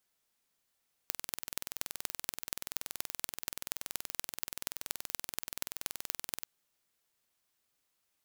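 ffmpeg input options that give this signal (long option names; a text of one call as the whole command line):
ffmpeg -f lavfi -i "aevalsrc='0.562*eq(mod(n,2100),0)*(0.5+0.5*eq(mod(n,10500),0))':duration=5.37:sample_rate=44100" out.wav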